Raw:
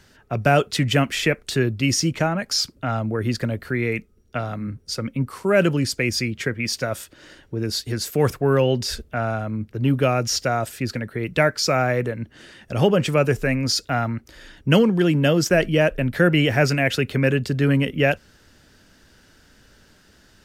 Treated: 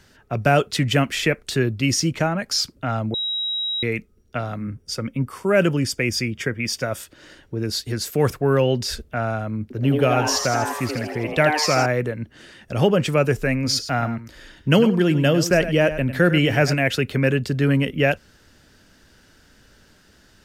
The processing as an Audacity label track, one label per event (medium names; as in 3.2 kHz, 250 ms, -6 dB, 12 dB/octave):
3.140000	3.830000	bleep 3.84 kHz -22 dBFS
4.570000	6.990000	Butterworth band-stop 4.1 kHz, Q 7.7
9.620000	11.860000	frequency-shifting echo 81 ms, feedback 57%, per repeat +150 Hz, level -5.5 dB
13.540000	16.740000	delay 101 ms -12 dB